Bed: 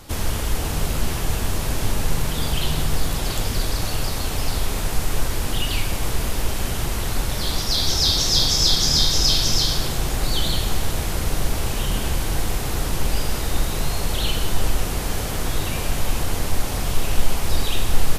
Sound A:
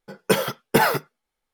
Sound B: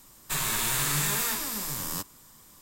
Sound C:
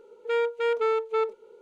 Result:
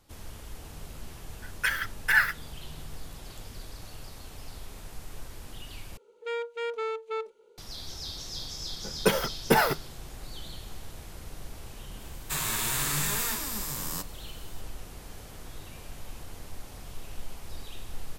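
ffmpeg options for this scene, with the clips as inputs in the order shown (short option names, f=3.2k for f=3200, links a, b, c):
-filter_complex "[1:a]asplit=2[a][b];[0:a]volume=-20dB[c];[a]highpass=f=1.7k:t=q:w=7.8[d];[3:a]highshelf=f=2.1k:g=8.5[e];[c]asplit=2[f][g];[f]atrim=end=5.974[h];[e]atrim=end=1.61,asetpts=PTS-STARTPTS,volume=-8.5dB[i];[g]atrim=start=7.576[j];[d]atrim=end=1.53,asetpts=PTS-STARTPTS,volume=-9.5dB,afade=t=in:d=0.004:c=hsin,afade=t=out:st=1.526:d=0.004:c=hsin,adelay=1340[k];[b]atrim=end=1.53,asetpts=PTS-STARTPTS,volume=-4dB,afade=t=in:d=0.004:c=hsin,afade=t=out:st=1.526:d=0.004:c=hsin,adelay=8760[l];[2:a]atrim=end=2.61,asetpts=PTS-STARTPTS,volume=-2dB,afade=t=in:d=0.004:c=hsin,afade=t=out:st=2.606:d=0.004:c=hsin,adelay=12000[m];[h][i]acrossfade=d=0.004:c1=hsin:c2=hsin[n];[n][j]acrossfade=d=0.004:c1=hsin:c2=hsin[o];[o][k][l][m]amix=inputs=4:normalize=0"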